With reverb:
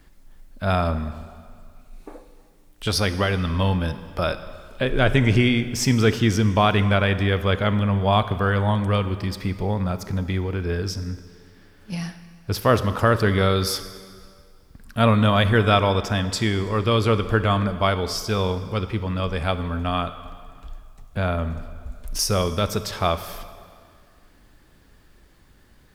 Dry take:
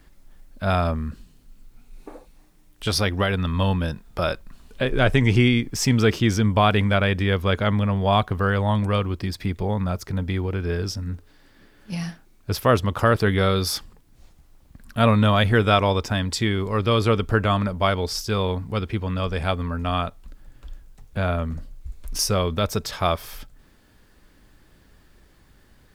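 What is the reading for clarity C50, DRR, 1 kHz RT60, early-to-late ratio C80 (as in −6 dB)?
12.0 dB, 11.0 dB, 2.1 s, 13.0 dB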